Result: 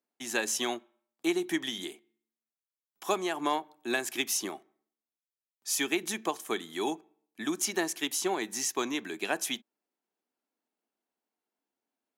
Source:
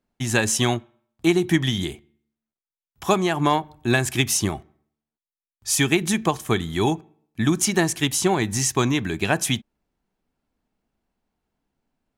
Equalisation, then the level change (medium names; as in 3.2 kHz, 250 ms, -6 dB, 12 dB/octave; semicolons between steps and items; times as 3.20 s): high-pass 270 Hz 24 dB/octave; dynamic bell 8.6 kHz, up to -6 dB, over -40 dBFS, Q 2.9; treble shelf 6.5 kHz +5 dB; -9.0 dB